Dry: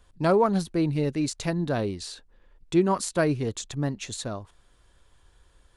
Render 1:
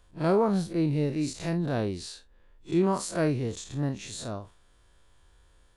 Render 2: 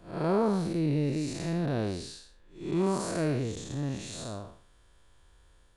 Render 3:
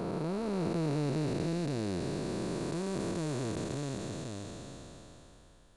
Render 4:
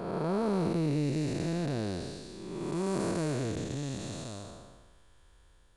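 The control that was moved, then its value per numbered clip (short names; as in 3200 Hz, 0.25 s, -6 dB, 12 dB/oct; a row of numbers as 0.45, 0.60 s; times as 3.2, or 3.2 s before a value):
time blur, width: 88, 226, 1510, 563 ms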